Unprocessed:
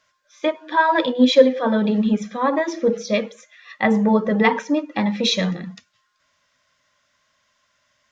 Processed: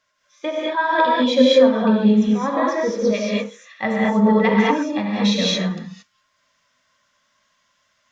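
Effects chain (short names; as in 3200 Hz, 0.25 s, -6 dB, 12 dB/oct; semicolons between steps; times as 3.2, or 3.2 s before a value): non-linear reverb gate 0.25 s rising, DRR -4.5 dB; gain -5 dB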